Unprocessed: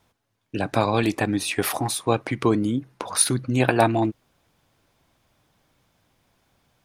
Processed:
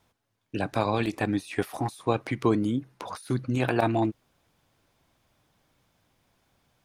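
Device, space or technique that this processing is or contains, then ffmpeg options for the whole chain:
de-esser from a sidechain: -filter_complex "[0:a]asplit=2[link_01][link_02];[link_02]highpass=frequency=4300:width=0.5412,highpass=frequency=4300:width=1.3066,apad=whole_len=301702[link_03];[link_01][link_03]sidechaincompress=threshold=-42dB:ratio=20:attack=2.3:release=25,volume=-3dB"

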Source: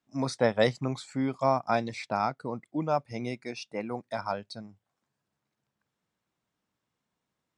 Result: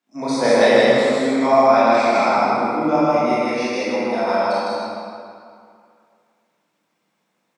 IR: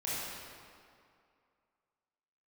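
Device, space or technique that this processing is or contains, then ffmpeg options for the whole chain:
stadium PA: -filter_complex "[0:a]highpass=frequency=200:width=0.5412,highpass=frequency=200:width=1.3066,equalizer=frequency=2300:width_type=o:width=0.24:gain=3.5,aecho=1:1:157.4|271.1:0.891|0.282[link_01];[1:a]atrim=start_sample=2205[link_02];[link_01][link_02]afir=irnorm=-1:irlink=0,volume=6dB"

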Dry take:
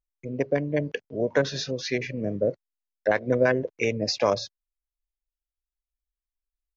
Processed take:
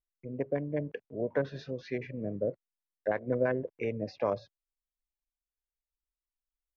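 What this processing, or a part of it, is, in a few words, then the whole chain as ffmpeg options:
phone in a pocket: -filter_complex "[0:a]asettb=1/sr,asplit=3[link_01][link_02][link_03];[link_01]atrim=end=1.594[link_04];[link_02]atrim=start=1.59:end=2.07,asetpts=PTS-STARTPTS,afade=type=in:duration=0.004:curve=qsin,afade=type=out:start_time=0.476:duration=0.004:curve=qsin,highshelf=frequency=4400:gain=5.5[link_05];[link_03]atrim=start=2.066[link_06];[link_04][link_05]acrossfade=duration=0.004:curve1=hsin:curve2=qsin[link_07];[link_07][link_06]acrossfade=duration=0.004:curve1=qsin:curve2=hsin,lowpass=3100,highshelf=frequency=2300:gain=-12,volume=-6.5dB"

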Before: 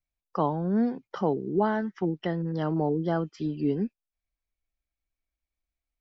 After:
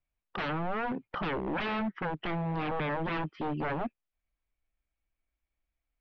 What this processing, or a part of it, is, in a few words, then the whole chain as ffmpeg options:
synthesiser wavefolder: -af "aeval=exprs='0.0316*(abs(mod(val(0)/0.0316+3,4)-2)-1)':channel_layout=same,lowpass=frequency=3100:width=0.5412,lowpass=frequency=3100:width=1.3066,volume=3dB"

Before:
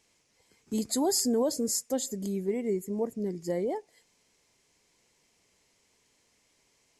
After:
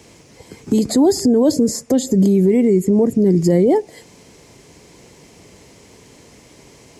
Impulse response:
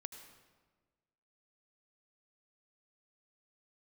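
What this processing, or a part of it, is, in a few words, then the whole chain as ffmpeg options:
mastering chain: -filter_complex "[0:a]highpass=43,equalizer=frequency=200:width_type=o:width=2.1:gain=3.5,acrossover=split=330|1800|6900[link_01][link_02][link_03][link_04];[link_01]acompressor=threshold=-34dB:ratio=4[link_05];[link_02]acompressor=threshold=-39dB:ratio=4[link_06];[link_03]acompressor=threshold=-45dB:ratio=4[link_07];[link_04]acompressor=threshold=-53dB:ratio=4[link_08];[link_05][link_06][link_07][link_08]amix=inputs=4:normalize=0,acompressor=threshold=-41dB:ratio=1.5,tiltshelf=frequency=770:gain=5.5,alimiter=level_in=29dB:limit=-1dB:release=50:level=0:latency=1,asettb=1/sr,asplit=3[link_09][link_10][link_11];[link_09]atrim=end=2.644[link_12];[link_10]atrim=start=2.64:end=3.15,asetpts=PTS-STARTPTS,afade=type=in:duration=0.004:curve=qsin,afade=type=out:start_time=0.506:duration=0.004:curve=qsin,lowpass=12000[link_13];[link_11]atrim=start=3.146[link_14];[link_12][link_13]acrossfade=duration=0.004:curve1=hsin:curve2=qsin[link_15];[link_15][link_14]acrossfade=duration=0.004:curve1=qsin:curve2=hsin,equalizer=frequency=220:width_type=o:width=0.43:gain=-3.5,volume=-4.5dB"

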